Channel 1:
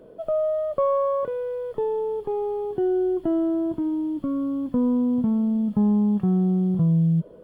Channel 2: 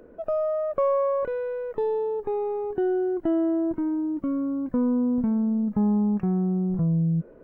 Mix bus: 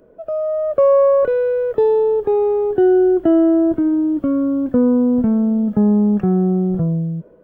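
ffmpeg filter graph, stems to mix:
-filter_complex "[0:a]lowpass=1300,volume=0.668[s0];[1:a]volume=-1,volume=0.422[s1];[s0][s1]amix=inputs=2:normalize=0,highshelf=f=2200:g=8.5,dynaudnorm=f=150:g=9:m=3.55"

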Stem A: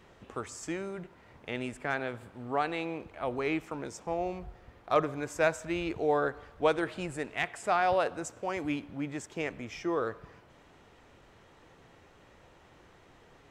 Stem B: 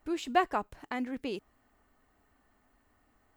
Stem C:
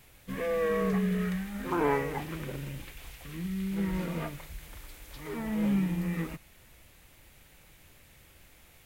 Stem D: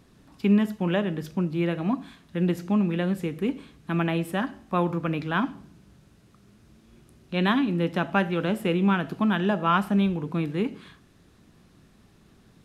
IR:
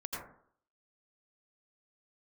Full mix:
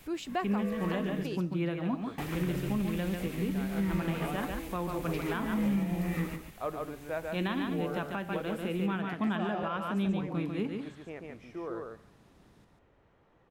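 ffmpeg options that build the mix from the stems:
-filter_complex "[0:a]lowpass=f=1300:p=1,adelay=1700,volume=0.398,asplit=2[s0][s1];[s1]volume=0.708[s2];[1:a]volume=0.794,asplit=2[s3][s4];[2:a]volume=1.26,asplit=3[s5][s6][s7];[s5]atrim=end=1.09,asetpts=PTS-STARTPTS,afade=t=out:st=1.086:d=0.004:c=hsin[s8];[s6]atrim=start=1.09:end=2.18,asetpts=PTS-STARTPTS,volume=0[s9];[s7]atrim=start=2.18,asetpts=PTS-STARTPTS,afade=t=in:d=0.004:c=hsin[s10];[s8][s9][s10]concat=n=3:v=0:a=1,asplit=2[s11][s12];[s12]volume=0.335[s13];[3:a]volume=0.473,asplit=2[s14][s15];[s15]volume=0.562[s16];[s4]apad=whole_len=390615[s17];[s11][s17]sidechaincompress=threshold=0.00251:ratio=8:attack=16:release=286[s18];[s2][s13][s16]amix=inputs=3:normalize=0,aecho=0:1:143:1[s19];[s0][s3][s18][s14][s19]amix=inputs=5:normalize=0,alimiter=limit=0.0794:level=0:latency=1:release=347"

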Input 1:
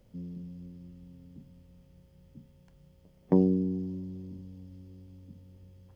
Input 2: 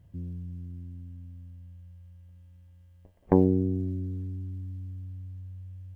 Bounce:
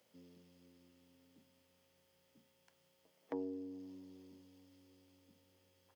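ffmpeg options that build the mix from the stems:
-filter_complex "[0:a]tiltshelf=f=700:g=-6,acompressor=threshold=0.0112:ratio=2,volume=0.562[s0];[1:a]adelay=6.8,volume=0.15[s1];[s0][s1]amix=inputs=2:normalize=0,acrossover=split=490[s2][s3];[s3]acompressor=threshold=0.00501:ratio=6[s4];[s2][s4]amix=inputs=2:normalize=0,highpass=340"

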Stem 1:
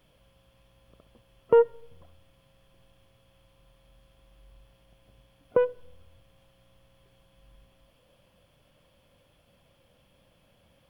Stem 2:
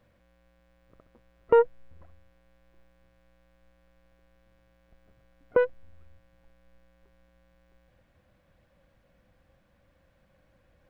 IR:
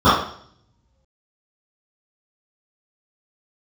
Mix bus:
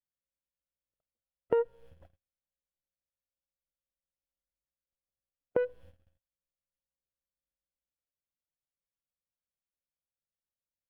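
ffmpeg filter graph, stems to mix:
-filter_complex "[0:a]volume=0.501[s0];[1:a]volume=-1,adelay=1.8,volume=0.891[s1];[s0][s1]amix=inputs=2:normalize=0,agate=range=0.00708:threshold=0.00355:ratio=16:detection=peak,acompressor=threshold=0.0316:ratio=2.5"

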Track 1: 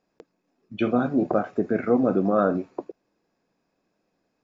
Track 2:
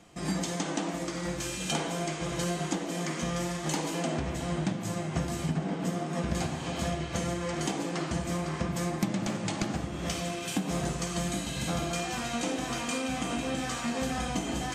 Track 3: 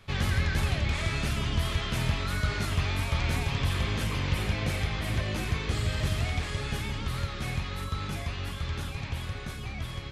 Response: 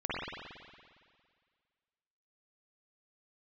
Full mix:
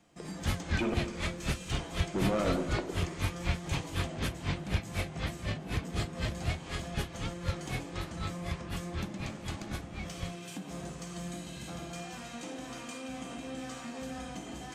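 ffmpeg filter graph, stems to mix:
-filter_complex "[0:a]acompressor=threshold=0.0891:ratio=6,asoftclip=type=tanh:threshold=0.0447,volume=0.841,asplit=3[s0][s1][s2];[s0]atrim=end=0.94,asetpts=PTS-STARTPTS,afade=t=out:st=0.936:d=0.004:c=hsin[s3];[s1]atrim=start=0.94:end=2.14,asetpts=PTS-STARTPTS,volume=0[s4];[s2]atrim=start=2.14,asetpts=PTS-STARTPTS,afade=t=in:d=0.004:c=hsin[s5];[s3][s4][s5]concat=n=3:v=0:a=1,asplit=2[s6][s7];[s7]volume=0.266[s8];[1:a]asoftclip=type=tanh:threshold=0.0841,volume=0.282,asplit=2[s9][s10];[s10]volume=0.15[s11];[2:a]asoftclip=type=tanh:threshold=0.158,aeval=exprs='val(0)*pow(10,-30*(0.5-0.5*cos(2*PI*4*n/s))/20)':c=same,adelay=250,volume=1.06[s12];[3:a]atrim=start_sample=2205[s13];[s8][s11]amix=inputs=2:normalize=0[s14];[s14][s13]afir=irnorm=-1:irlink=0[s15];[s6][s9][s12][s15]amix=inputs=4:normalize=0"

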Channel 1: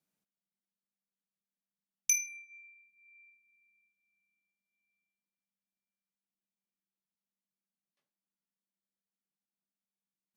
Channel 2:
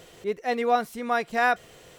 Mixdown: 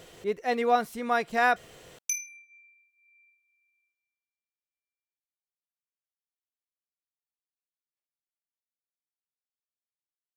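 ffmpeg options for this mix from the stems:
-filter_complex "[0:a]highpass=430,volume=0.75,afade=t=out:st=3.92:d=0.27:silence=0.237137[s0];[1:a]volume=0.891[s1];[s0][s1]amix=inputs=2:normalize=0"

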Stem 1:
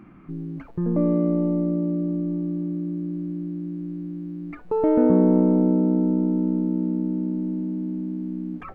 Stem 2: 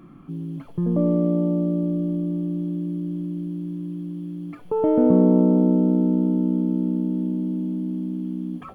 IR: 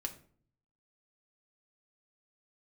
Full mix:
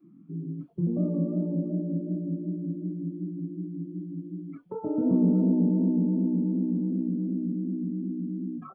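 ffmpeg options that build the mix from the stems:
-filter_complex "[0:a]aemphasis=mode=production:type=bsi,volume=0.266[s0];[1:a]highpass=130,flanger=delay=19:depth=7.4:speed=2.7,adelay=4.6,volume=1.12[s1];[s0][s1]amix=inputs=2:normalize=0,afftdn=nr=24:nf=-37,acrossover=split=280|3000[s2][s3][s4];[s3]acompressor=threshold=0.00708:ratio=2.5[s5];[s2][s5][s4]amix=inputs=3:normalize=0"

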